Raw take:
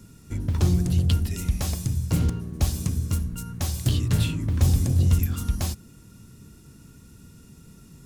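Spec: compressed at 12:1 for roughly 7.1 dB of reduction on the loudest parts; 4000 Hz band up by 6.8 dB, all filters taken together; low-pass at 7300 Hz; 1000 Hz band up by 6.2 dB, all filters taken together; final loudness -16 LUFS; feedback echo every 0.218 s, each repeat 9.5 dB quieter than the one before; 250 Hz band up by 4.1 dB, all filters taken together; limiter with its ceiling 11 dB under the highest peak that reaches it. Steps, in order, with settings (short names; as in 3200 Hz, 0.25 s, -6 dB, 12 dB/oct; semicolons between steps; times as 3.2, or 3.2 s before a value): LPF 7300 Hz; bell 250 Hz +6 dB; bell 1000 Hz +7.5 dB; bell 4000 Hz +8.5 dB; compressor 12:1, threshold -21 dBFS; limiter -22 dBFS; feedback echo 0.218 s, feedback 33%, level -9.5 dB; gain +14.5 dB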